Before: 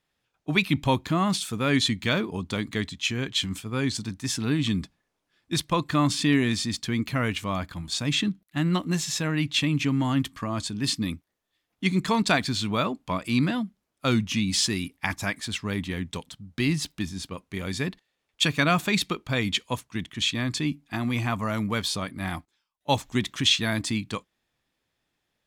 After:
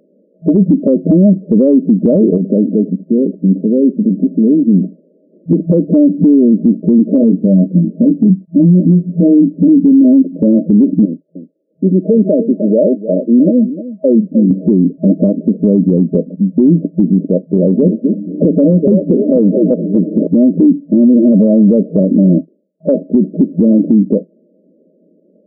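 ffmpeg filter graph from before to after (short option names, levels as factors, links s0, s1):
-filter_complex "[0:a]asettb=1/sr,asplit=3[s0][s1][s2];[s0]atrim=end=2.374[s3];[s1]atrim=start=2.37:end=5.53,asetpts=PTS-STARTPTS,afade=t=in:d=0.004:c=qsin,afade=t=out:st=3.156:d=0.004:c=qsin,acompressor=threshold=0.0112:ratio=5:attack=3.2:release=140:knee=1:detection=peak,aecho=1:1:78:0.119,atrim=end_sample=139356[s4];[s2]atrim=start=5.526[s5];[s3][s4]acrossfade=d=0.004:c1=hsin:c2=qsin[s6];[s6][s5]acrossfade=d=0.004:c1=qsin:c2=hsin,asettb=1/sr,asplit=3[s7][s8][s9];[s7]atrim=end=7.184[s10];[s8]atrim=start=7.18:end=10.05,asetpts=PTS-STARTPTS,afade=t=in:d=0.004:c=qsin,afade=t=out:st=2.866:d=0.004:c=qsin,equalizer=f=670:w=0.58:g=-12.5,asplit=2[s11][s12];[s12]adelay=22,volume=0.531[s13];[s11][s13]amix=inputs=2:normalize=0,atrim=end_sample=126567[s14];[s9]atrim=start=10.046[s15];[s10][s14]acrossfade=d=0.004:c1=hsin:c2=qsin[s16];[s16][s15]acrossfade=d=0.004:c1=qsin:c2=hsin,asettb=1/sr,asplit=3[s17][s18][s19];[s17]atrim=end=11.054[s20];[s18]atrim=start=11.05:end=14.51,asetpts=PTS-STARTPTS,afade=t=in:d=0.004:c=qsin,afade=t=out:st=3.456:d=0.004:c=qsin,highpass=f=1400:p=1,aecho=1:1:304:0.168,atrim=end_sample=152586[s21];[s19]atrim=start=14.506[s22];[s20][s21]acrossfade=d=0.004:c1=hsin:c2=qsin[s23];[s23][s22]acrossfade=d=0.004:c1=qsin:c2=hsin,asettb=1/sr,asplit=3[s24][s25][s26];[s24]atrim=end=17.314[s27];[s25]atrim=start=17.31:end=20.27,asetpts=PTS-STARTPTS,afade=t=in:d=0.004:c=qsin,afade=t=out:st=2.956:d=0.004:c=qsin,aeval=exprs='if(lt(val(0),0),0.447*val(0),val(0))':c=same,asplit=5[s28][s29][s30][s31][s32];[s29]adelay=243,afreqshift=-150,volume=0.376[s33];[s30]adelay=486,afreqshift=-300,volume=0.135[s34];[s31]adelay=729,afreqshift=-450,volume=0.049[s35];[s32]adelay=972,afreqshift=-600,volume=0.0176[s36];[s28][s33][s34][s35][s36]amix=inputs=5:normalize=0,atrim=end_sample=130536[s37];[s26]atrim=start=20.266[s38];[s27][s37]acrossfade=d=0.004:c1=hsin:c2=qsin[s39];[s39][s38]acrossfade=d=0.004:c1=qsin:c2=hsin,afftfilt=real='re*between(b*sr/4096,170,640)':imag='im*between(b*sr/4096,170,640)':win_size=4096:overlap=0.75,acompressor=threshold=0.0251:ratio=5,alimiter=level_in=56.2:limit=0.891:release=50:level=0:latency=1,volume=0.891"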